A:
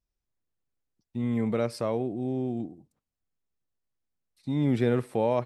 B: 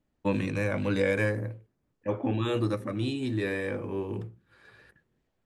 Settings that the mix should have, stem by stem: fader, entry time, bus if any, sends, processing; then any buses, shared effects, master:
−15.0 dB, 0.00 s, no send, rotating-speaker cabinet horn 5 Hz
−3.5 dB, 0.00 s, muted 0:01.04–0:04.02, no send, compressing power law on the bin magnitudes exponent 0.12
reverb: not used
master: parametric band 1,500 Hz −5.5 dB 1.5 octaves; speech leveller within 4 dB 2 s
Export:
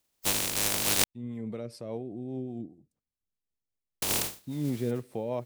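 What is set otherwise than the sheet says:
stem A −15.0 dB → −8.5 dB
stem B −3.5 dB → +3.0 dB

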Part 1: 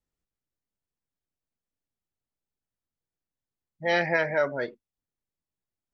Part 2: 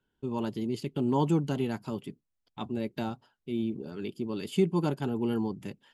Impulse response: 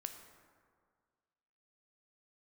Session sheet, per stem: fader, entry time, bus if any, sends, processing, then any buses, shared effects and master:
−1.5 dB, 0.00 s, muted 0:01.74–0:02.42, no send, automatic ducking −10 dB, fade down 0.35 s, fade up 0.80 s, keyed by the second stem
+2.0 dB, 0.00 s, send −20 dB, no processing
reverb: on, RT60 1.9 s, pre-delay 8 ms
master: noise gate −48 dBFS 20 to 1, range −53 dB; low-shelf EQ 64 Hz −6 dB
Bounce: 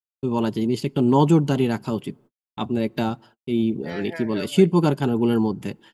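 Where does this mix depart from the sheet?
stem 2 +2.0 dB → +9.0 dB
master: missing low-shelf EQ 64 Hz −6 dB

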